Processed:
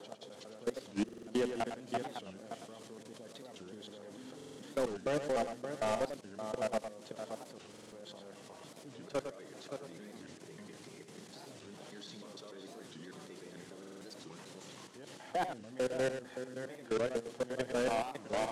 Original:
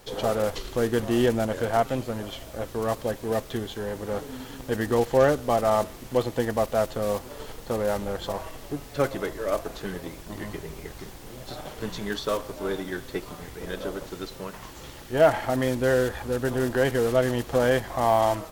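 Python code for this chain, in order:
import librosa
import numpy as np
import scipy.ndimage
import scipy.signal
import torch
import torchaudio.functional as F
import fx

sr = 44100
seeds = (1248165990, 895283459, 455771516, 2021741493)

y = fx.block_reorder(x, sr, ms=149.0, group=2)
y = fx.level_steps(y, sr, step_db=22)
y = scipy.signal.sosfilt(scipy.signal.butter(4, 150.0, 'highpass', fs=sr, output='sos'), y)
y = y + 10.0 ** (-11.0 / 20.0) * np.pad(y, (int(571 * sr / 1000.0), 0))[:len(y)]
y = np.clip(10.0 ** (20.5 / 20.0) * y, -1.0, 1.0) / 10.0 ** (20.5 / 20.0)
y = scipy.signal.sosfilt(scipy.signal.butter(4, 9700.0, 'lowpass', fs=sr, output='sos'), y)
y = fx.peak_eq(y, sr, hz=1000.0, db=-5.5, octaves=2.6)
y = y + 10.0 ** (-9.0 / 20.0) * np.pad(y, (int(105 * sr / 1000.0), 0))[:len(y)]
y = fx.buffer_glitch(y, sr, at_s=(1.04, 4.36, 7.69, 13.78), block=2048, repeats=4)
y = fx.record_warp(y, sr, rpm=45.0, depth_cents=250.0)
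y = y * 10.0 ** (-3.5 / 20.0)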